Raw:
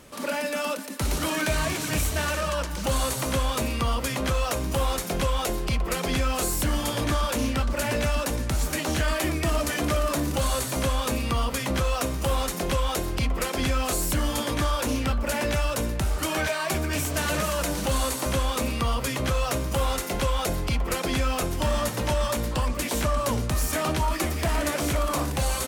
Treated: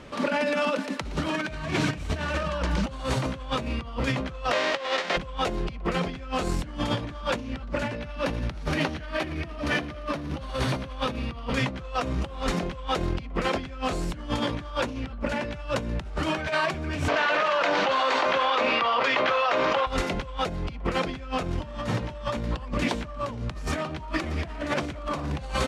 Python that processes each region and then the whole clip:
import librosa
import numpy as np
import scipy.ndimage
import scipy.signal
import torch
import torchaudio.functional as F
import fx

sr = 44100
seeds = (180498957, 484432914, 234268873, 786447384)

y = fx.envelope_flatten(x, sr, power=0.3, at=(4.51, 5.16), fade=0.02)
y = fx.bandpass_edges(y, sr, low_hz=330.0, high_hz=4700.0, at=(4.51, 5.16), fade=0.02)
y = fx.small_body(y, sr, hz=(580.0, 1900.0), ring_ms=30, db=8, at=(4.51, 5.16), fade=0.02)
y = fx.chain(y, sr, fx.peak_eq(hz=7400.0, db=-9.0, octaves=0.3),
    fx.echo_wet_highpass(ms=80, feedback_pct=64, hz=1600.0, wet_db=-8.5), at=(7.95, 11.53))
y = fx.chain(y, sr, fx.highpass(hz=650.0, slope=12),
    fx.air_absorb(metres=180.0),
    fx.env_flatten(amount_pct=100), at=(17.08, 19.87))
y = scipy.signal.sosfilt(scipy.signal.butter(2, 3700.0, 'lowpass', fs=sr, output='sos'), y)
y = fx.dynamic_eq(y, sr, hz=160.0, q=1.1, threshold_db=-39.0, ratio=4.0, max_db=5)
y = fx.over_compress(y, sr, threshold_db=-29.0, ratio=-0.5)
y = y * 10.0 ** (1.5 / 20.0)